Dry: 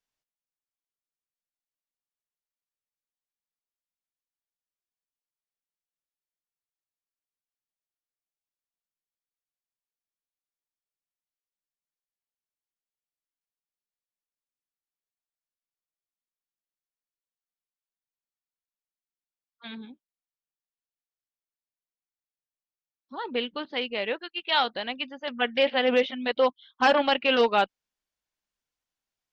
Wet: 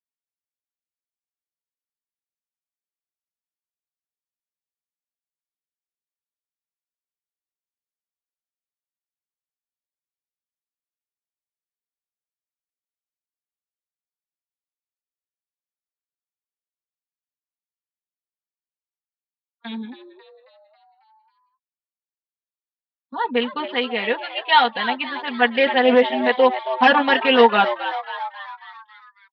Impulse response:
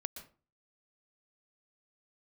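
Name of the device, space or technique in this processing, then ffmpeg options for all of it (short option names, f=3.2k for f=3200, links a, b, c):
frequency-shifting delay pedal into a guitar cabinet: -filter_complex "[0:a]agate=range=-23dB:threshold=-47dB:ratio=16:detection=peak,aecho=1:1:4.2:0.95,asplit=7[a][b][c][d][e][f][g];[b]adelay=272,afreqshift=130,volume=-12dB[h];[c]adelay=544,afreqshift=260,volume=-17.2dB[i];[d]adelay=816,afreqshift=390,volume=-22.4dB[j];[e]adelay=1088,afreqshift=520,volume=-27.6dB[k];[f]adelay=1360,afreqshift=650,volume=-32.8dB[l];[g]adelay=1632,afreqshift=780,volume=-38dB[m];[a][h][i][j][k][l][m]amix=inputs=7:normalize=0,highpass=100,equalizer=f=220:t=q:w=4:g=3,equalizer=f=880:t=q:w=4:g=8,equalizer=f=1.8k:t=q:w=4:g=7,lowpass=f=4.2k:w=0.5412,lowpass=f=4.2k:w=1.3066,volume=2dB"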